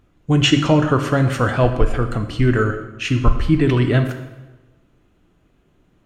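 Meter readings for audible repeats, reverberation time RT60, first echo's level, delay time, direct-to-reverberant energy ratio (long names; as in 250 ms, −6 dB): no echo audible, 1.2 s, no echo audible, no echo audible, 6.5 dB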